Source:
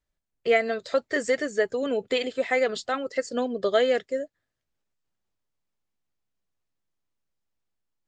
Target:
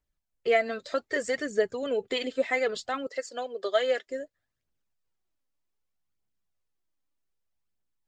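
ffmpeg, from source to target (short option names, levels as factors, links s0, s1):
-filter_complex "[0:a]asettb=1/sr,asplit=3[s0][s1][s2];[s0]atrim=end=3.074[s3];[s1]atrim=start=3.07:end=4.07,asetpts=PTS-STARTPTS,afade=t=in:d=0.004:c=qsin,afade=t=out:st=0.996:d=0.004:c=qsin,highpass=530[s4];[s2]atrim=start=4.066[s5];[s3][s4]acrossfade=d=0.004:c1=hsin:c2=qsin[s6];[s6][s5]acrossfade=d=0.004:c1=qsin:c2=hsin,aphaser=in_gain=1:out_gain=1:delay=3.9:decay=0.43:speed=0.64:type=triangular,volume=0.668"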